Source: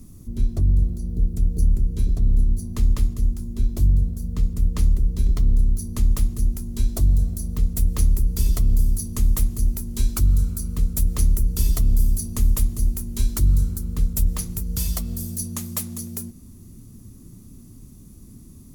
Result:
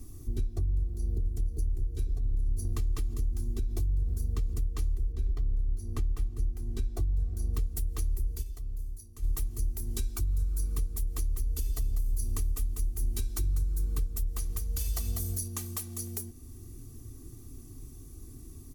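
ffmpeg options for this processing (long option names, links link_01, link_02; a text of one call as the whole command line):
ffmpeg -i in.wav -filter_complex "[0:a]asplit=2[link_01][link_02];[link_02]afade=type=in:start_time=0.68:duration=0.01,afade=type=out:start_time=1.25:duration=0.01,aecho=0:1:490|980|1470|1960|2450|2940|3430|3920|4410|4900|5390|5880:0.421697|0.316272|0.237204|0.177903|0.133427|0.100071|0.0750529|0.0562897|0.0422173|0.0316629|0.0237472|0.0178104[link_03];[link_01][link_03]amix=inputs=2:normalize=0,asettb=1/sr,asplit=3[link_04][link_05][link_06];[link_04]atrim=end=2.164[link_07];[link_05]atrim=start=2.16:end=4.49,asetpts=PTS-STARTPTS,afade=type=in:duration=0.004:curve=qsin,afade=type=out:start_time=2.326:duration=0.004:curve=qsin,acompressor=threshold=-20dB:ratio=6:attack=3.2:release=140:knee=1:detection=peak[link_08];[link_06]atrim=start=4.486[link_09];[link_07][link_08]acrossfade=duration=0.004:curve1=hsin:curve2=qsin[link_10];[link_10][link_09]acrossfade=duration=0.004:curve1=qsin:curve2=hsin,asettb=1/sr,asplit=3[link_11][link_12][link_13];[link_11]atrim=end=5.124[link_14];[link_12]atrim=start=5.12:end=7.54,asetpts=PTS-STARTPTS,afade=type=in:duration=0.004:curve=qsin,afade=type=out:start_time=2.416:duration=0.004:curve=qsin,highshelf=frequency=4500:gain=-12[link_15];[link_13]atrim=start=7.536[link_16];[link_14][link_15]acrossfade=duration=0.004:curve1=hsin:curve2=qsin[link_17];[link_17][link_16]acrossfade=duration=0.004:curve1=qsin:curve2=hsin,asettb=1/sr,asplit=3[link_18][link_19][link_20];[link_18]atrim=end=10.224[link_21];[link_19]atrim=start=10.22:end=15.48,asetpts=PTS-STARTPTS,afade=type=in:duration=0.004:curve=qsin,afade=type=out:start_time=5.256:duration=0.004:curve=qsin,aecho=1:1:196:0.422,atrim=end_sample=231966[link_22];[link_20]atrim=start=15.476[link_23];[link_21][link_22]acrossfade=duration=0.004:curve1=hsin:curve2=qsin[link_24];[link_24][link_23]acrossfade=duration=0.004:curve1=qsin:curve2=hsin,asplit=3[link_25][link_26][link_27];[link_25]atrim=end=8.44,asetpts=PTS-STARTPTS,afade=type=out:start_time=8.32:duration=0.12:silence=0.105925[link_28];[link_26]atrim=start=8.44:end=9.22,asetpts=PTS-STARTPTS,volume=-19.5dB[link_29];[link_27]atrim=start=9.22,asetpts=PTS-STARTPTS,afade=type=in:duration=0.12:silence=0.105925[link_30];[link_28][link_29][link_30]concat=n=3:v=0:a=1,acompressor=threshold=-23dB:ratio=4,aecho=1:1:2.6:0.97,alimiter=limit=-17dB:level=0:latency=1:release=394,volume=-4.5dB" out.wav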